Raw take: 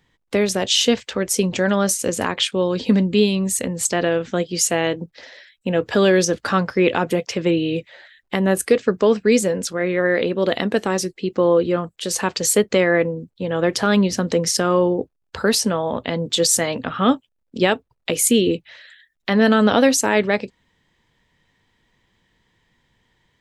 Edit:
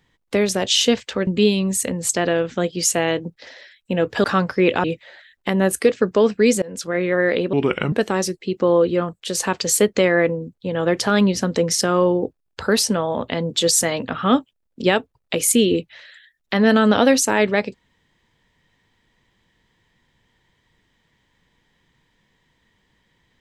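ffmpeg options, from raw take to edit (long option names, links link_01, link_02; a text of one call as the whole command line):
ffmpeg -i in.wav -filter_complex "[0:a]asplit=7[link_01][link_02][link_03][link_04][link_05][link_06][link_07];[link_01]atrim=end=1.272[link_08];[link_02]atrim=start=3.028:end=6.002[link_09];[link_03]atrim=start=6.428:end=7.032[link_10];[link_04]atrim=start=7.698:end=9.48,asetpts=PTS-STARTPTS,afade=type=out:start_time=1.778:duration=0.004:curve=hsin:silence=0.0749894[link_11];[link_05]atrim=start=9.48:end=10.394,asetpts=PTS-STARTPTS,afade=type=in:duration=0.28:silence=0.0749894[link_12];[link_06]atrim=start=10.39:end=10.68,asetpts=PTS-STARTPTS,asetrate=32634,aresample=44100,atrim=end_sample=17282,asetpts=PTS-STARTPTS[link_13];[link_07]atrim=start=10.676[link_14];[link_08][link_09]acrossfade=duration=0.004:curve1=hsin:curve2=hsin[link_15];[link_15][link_10]acrossfade=duration=0.004:curve1=hsin:curve2=hsin[link_16];[link_11][link_12]concat=n=2:v=0:a=1[link_17];[link_16][link_17]acrossfade=duration=0.004:curve1=hsin:curve2=hsin[link_18];[link_18][link_13]acrossfade=duration=0.004:curve1=hsin:curve2=hsin[link_19];[link_19][link_14]acrossfade=duration=0.004:curve1=hsin:curve2=hsin" out.wav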